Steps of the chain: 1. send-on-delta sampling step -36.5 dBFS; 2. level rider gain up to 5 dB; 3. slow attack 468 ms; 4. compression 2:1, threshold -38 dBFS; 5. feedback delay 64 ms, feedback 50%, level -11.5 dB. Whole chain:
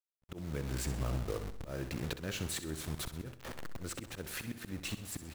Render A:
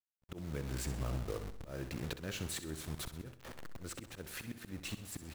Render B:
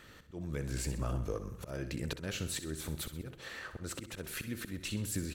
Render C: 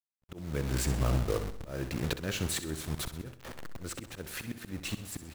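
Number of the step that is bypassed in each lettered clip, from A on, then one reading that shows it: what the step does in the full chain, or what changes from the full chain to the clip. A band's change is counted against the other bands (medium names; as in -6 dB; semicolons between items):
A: 2, momentary loudness spread change +1 LU; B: 1, distortion -12 dB; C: 4, mean gain reduction 3.0 dB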